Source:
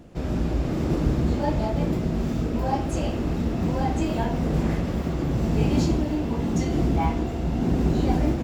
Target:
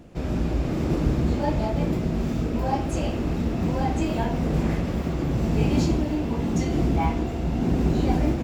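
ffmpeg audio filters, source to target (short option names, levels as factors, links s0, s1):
-af "equalizer=f=2400:w=4.4:g=2.5"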